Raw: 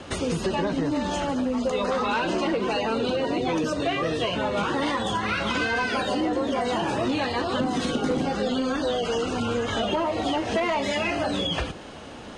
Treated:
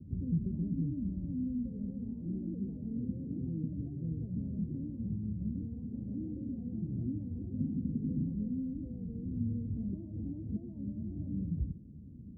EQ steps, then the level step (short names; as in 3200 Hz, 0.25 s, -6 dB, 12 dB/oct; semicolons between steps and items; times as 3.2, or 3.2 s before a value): HPF 56 Hz; inverse Chebyshev low-pass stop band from 1200 Hz, stop band 80 dB; 0.0 dB